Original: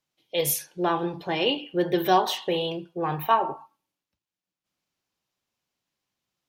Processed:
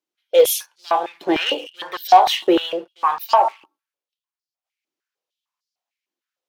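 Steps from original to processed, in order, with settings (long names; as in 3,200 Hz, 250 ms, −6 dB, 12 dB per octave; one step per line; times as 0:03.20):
leveller curve on the samples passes 2
high-pass on a step sequencer 6.6 Hz 330–4,800 Hz
level −3.5 dB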